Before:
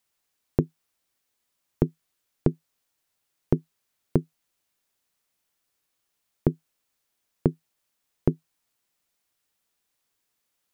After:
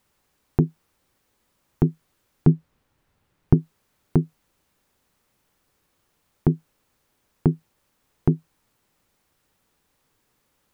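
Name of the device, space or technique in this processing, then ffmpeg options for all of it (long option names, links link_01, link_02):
mastering chain: -filter_complex "[0:a]equalizer=frequency=390:width_type=o:width=2.7:gain=-3.5,bandreject=frequency=680:width=12,acompressor=threshold=-22dB:ratio=2.5,asoftclip=type=tanh:threshold=-14dB,tiltshelf=frequency=1400:gain=8,alimiter=level_in=17.5dB:limit=-1dB:release=50:level=0:latency=1,asettb=1/sr,asplit=3[link_01][link_02][link_03];[link_01]atrim=end=2.474[link_04];[link_02]atrim=start=2.47:end=3.54,asetpts=PTS-STARTPTS,afade=type=in:duration=0.004:curve=qsin,afade=type=out:start_time=1.066:duration=0.004:curve=qsin,bass=frequency=250:gain=6,treble=frequency=4000:gain=-7[link_05];[link_03]atrim=start=3.536[link_06];[link_04][link_05]acrossfade=duration=0.004:curve1=hsin:curve2=qsin[link_07];[link_07][link_06]acrossfade=duration=0.004:curve1=qsin:curve2=hsin,volume=-5dB"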